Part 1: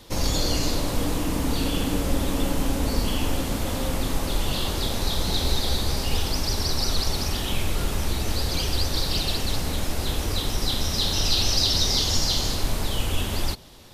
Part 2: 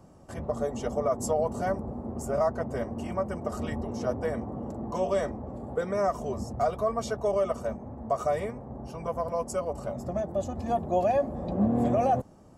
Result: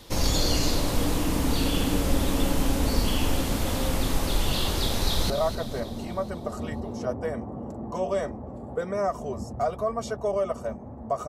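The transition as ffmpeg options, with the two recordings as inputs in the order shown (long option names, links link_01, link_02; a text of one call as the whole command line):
ffmpeg -i cue0.wav -i cue1.wav -filter_complex "[0:a]apad=whole_dur=11.28,atrim=end=11.28,atrim=end=5.302[link_01];[1:a]atrim=start=2.298:end=8.28[link_02];[link_01][link_02]acrossfade=duration=0.004:curve1=hsin:curve2=hsin,asplit=2[link_03][link_04];[link_04]afade=type=in:start_time=5.04:duration=0.01,afade=type=out:start_time=5.3:duration=0.01,aecho=0:1:250|500|750|1000|1250|1500|1750:0.334965|0.200979|0.120588|0.0723525|0.0434115|0.0260469|0.0156281[link_05];[link_03][link_05]amix=inputs=2:normalize=0" out.wav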